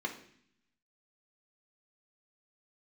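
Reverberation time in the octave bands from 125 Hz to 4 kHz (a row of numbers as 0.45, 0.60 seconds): 1.0, 1.0, 0.65, 0.60, 0.75, 0.80 seconds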